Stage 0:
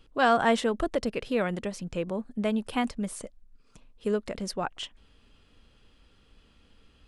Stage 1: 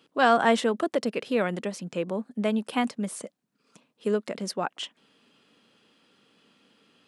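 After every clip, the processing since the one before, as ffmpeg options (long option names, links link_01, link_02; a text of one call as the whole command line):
ffmpeg -i in.wav -af "highpass=frequency=170:width=0.5412,highpass=frequency=170:width=1.3066,volume=2dB" out.wav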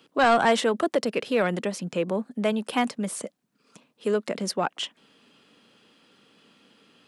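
ffmpeg -i in.wav -filter_complex "[0:a]acrossover=split=390|4800[link_01][link_02][link_03];[link_01]alimiter=level_in=4dB:limit=-24dB:level=0:latency=1,volume=-4dB[link_04];[link_02]asoftclip=type=tanh:threshold=-17.5dB[link_05];[link_04][link_05][link_03]amix=inputs=3:normalize=0,volume=4dB" out.wav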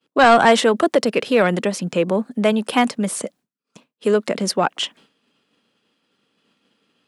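ffmpeg -i in.wav -af "agate=range=-33dB:threshold=-48dB:ratio=3:detection=peak,volume=7.5dB" out.wav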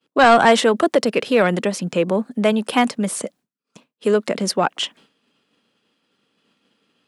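ffmpeg -i in.wav -af anull out.wav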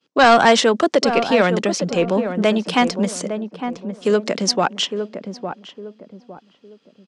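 ffmpeg -i in.wav -filter_complex "[0:a]lowpass=frequency=5900:width_type=q:width=2.1,asplit=2[link_01][link_02];[link_02]adelay=858,lowpass=frequency=860:poles=1,volume=-7dB,asplit=2[link_03][link_04];[link_04]adelay=858,lowpass=frequency=860:poles=1,volume=0.35,asplit=2[link_05][link_06];[link_06]adelay=858,lowpass=frequency=860:poles=1,volume=0.35,asplit=2[link_07][link_08];[link_08]adelay=858,lowpass=frequency=860:poles=1,volume=0.35[link_09];[link_03][link_05][link_07][link_09]amix=inputs=4:normalize=0[link_10];[link_01][link_10]amix=inputs=2:normalize=0" out.wav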